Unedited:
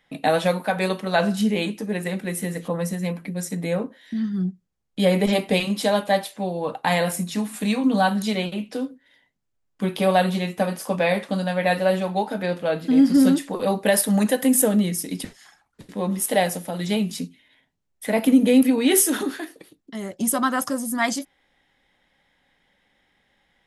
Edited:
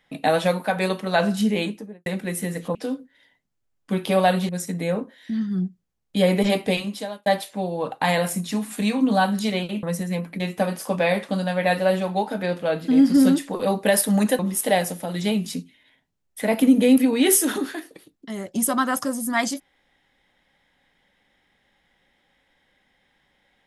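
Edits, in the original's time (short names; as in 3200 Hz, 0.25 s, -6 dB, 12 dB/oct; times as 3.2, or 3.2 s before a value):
1.59–2.06 studio fade out
2.75–3.32 swap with 8.66–10.4
5.43–6.09 fade out
14.39–16.04 cut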